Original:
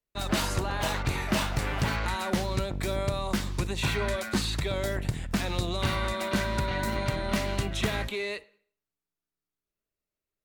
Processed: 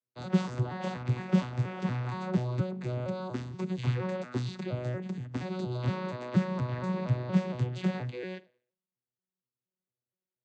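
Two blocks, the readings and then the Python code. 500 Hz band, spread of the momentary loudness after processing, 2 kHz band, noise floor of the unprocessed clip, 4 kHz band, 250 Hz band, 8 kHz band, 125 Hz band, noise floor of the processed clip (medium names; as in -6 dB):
-4.0 dB, 8 LU, -11.0 dB, under -85 dBFS, -14.5 dB, +1.0 dB, under -15 dB, +1.0 dB, under -85 dBFS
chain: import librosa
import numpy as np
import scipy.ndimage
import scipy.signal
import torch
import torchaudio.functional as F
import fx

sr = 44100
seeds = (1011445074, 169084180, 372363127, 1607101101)

y = fx.vocoder_arp(x, sr, chord='bare fifth', root=47, every_ms=235)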